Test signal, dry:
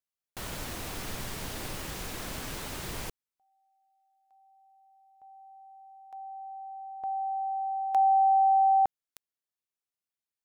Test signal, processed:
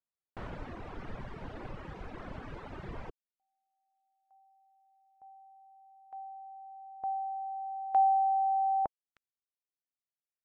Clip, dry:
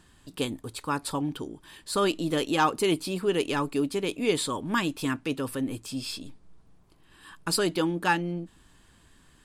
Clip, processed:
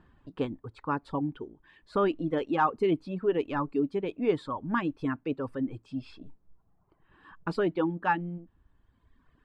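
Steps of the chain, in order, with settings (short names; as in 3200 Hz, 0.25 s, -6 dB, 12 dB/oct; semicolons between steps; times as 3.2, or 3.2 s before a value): LPF 1500 Hz 12 dB/oct; reverb removal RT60 1.6 s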